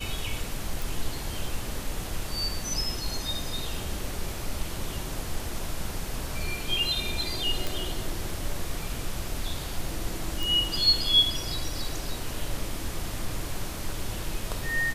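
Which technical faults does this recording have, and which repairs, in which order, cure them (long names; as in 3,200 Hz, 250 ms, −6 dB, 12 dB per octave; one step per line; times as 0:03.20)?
0:00.82: click
0:07.67: click
0:10.43: click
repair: click removal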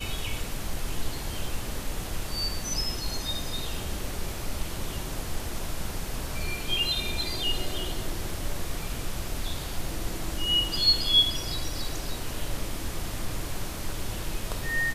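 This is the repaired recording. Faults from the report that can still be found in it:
none of them is left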